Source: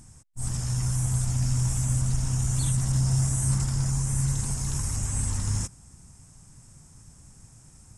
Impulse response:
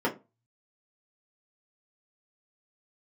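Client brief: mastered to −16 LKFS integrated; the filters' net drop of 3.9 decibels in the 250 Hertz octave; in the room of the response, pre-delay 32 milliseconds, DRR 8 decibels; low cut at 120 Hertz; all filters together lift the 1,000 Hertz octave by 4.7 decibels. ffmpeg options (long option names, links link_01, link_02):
-filter_complex "[0:a]highpass=120,equalizer=frequency=250:width_type=o:gain=-6,equalizer=frequency=1000:width_type=o:gain=6,asplit=2[link_01][link_02];[1:a]atrim=start_sample=2205,adelay=32[link_03];[link_02][link_03]afir=irnorm=-1:irlink=0,volume=-19.5dB[link_04];[link_01][link_04]amix=inputs=2:normalize=0,volume=12.5dB"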